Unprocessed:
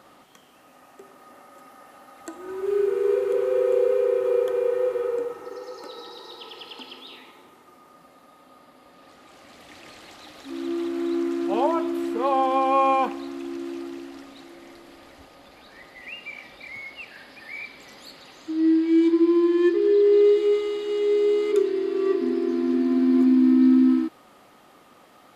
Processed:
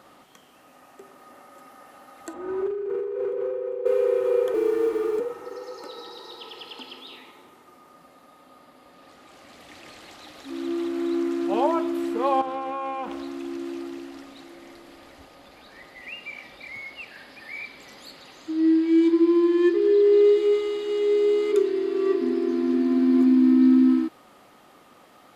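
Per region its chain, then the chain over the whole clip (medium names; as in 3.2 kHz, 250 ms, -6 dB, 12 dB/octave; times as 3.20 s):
2.33–3.86 s: low-pass 1.2 kHz 6 dB/octave + compressor with a negative ratio -28 dBFS
4.54–5.20 s: companding laws mixed up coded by mu + frequency shift -49 Hz
12.41–13.23 s: compression, threshold -27 dBFS + loudspeaker Doppler distortion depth 0.29 ms
whole clip: none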